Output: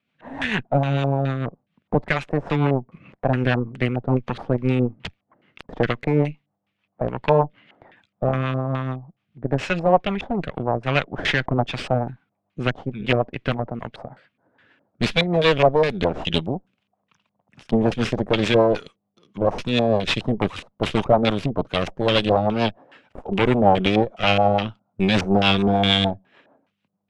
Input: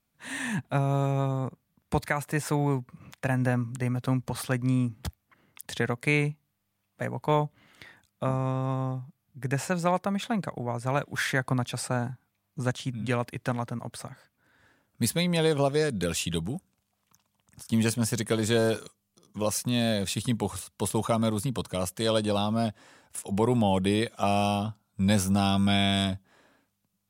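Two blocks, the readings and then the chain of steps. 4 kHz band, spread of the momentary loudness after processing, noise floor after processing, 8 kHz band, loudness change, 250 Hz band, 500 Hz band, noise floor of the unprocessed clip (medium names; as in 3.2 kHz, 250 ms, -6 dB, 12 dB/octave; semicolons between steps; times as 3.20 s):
+8.0 dB, 11 LU, -77 dBFS, under -10 dB, +6.5 dB, +5.0 dB, +8.5 dB, -78 dBFS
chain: high-pass 150 Hz 12 dB/octave; dynamic bell 5.7 kHz, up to +6 dB, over -46 dBFS, Q 0.95; Chebyshev shaper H 8 -14 dB, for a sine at -10 dBFS; LFO low-pass square 2.4 Hz 770–2800 Hz; rotary cabinet horn 6.7 Hz; trim +6 dB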